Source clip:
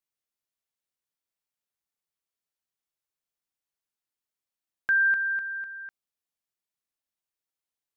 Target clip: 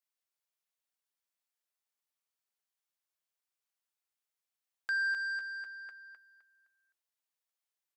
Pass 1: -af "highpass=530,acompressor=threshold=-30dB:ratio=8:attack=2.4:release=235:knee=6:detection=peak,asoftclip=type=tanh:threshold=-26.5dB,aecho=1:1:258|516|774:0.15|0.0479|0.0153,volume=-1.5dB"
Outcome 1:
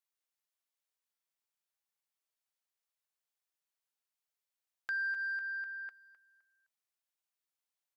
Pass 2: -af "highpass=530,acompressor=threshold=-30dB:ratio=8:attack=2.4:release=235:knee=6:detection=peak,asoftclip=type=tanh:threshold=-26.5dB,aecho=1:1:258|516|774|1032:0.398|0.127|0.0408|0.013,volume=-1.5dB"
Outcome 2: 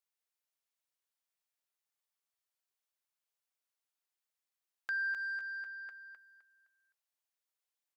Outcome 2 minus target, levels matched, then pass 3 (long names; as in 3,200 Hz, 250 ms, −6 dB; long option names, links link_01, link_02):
downward compressor: peak gain reduction +5.5 dB
-af "highpass=530,acompressor=threshold=-23.5dB:ratio=8:attack=2.4:release=235:knee=6:detection=peak,asoftclip=type=tanh:threshold=-26.5dB,aecho=1:1:258|516|774|1032:0.398|0.127|0.0408|0.013,volume=-1.5dB"